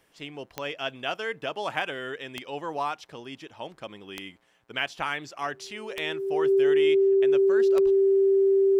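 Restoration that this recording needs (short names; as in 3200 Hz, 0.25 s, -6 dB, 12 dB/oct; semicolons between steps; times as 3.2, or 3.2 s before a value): de-click; notch 390 Hz, Q 30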